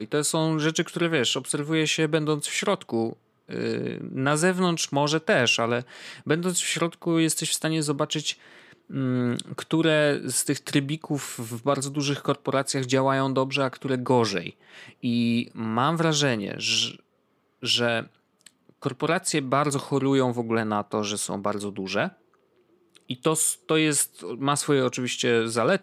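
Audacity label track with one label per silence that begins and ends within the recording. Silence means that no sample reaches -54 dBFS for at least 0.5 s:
17.000000	17.620000	silence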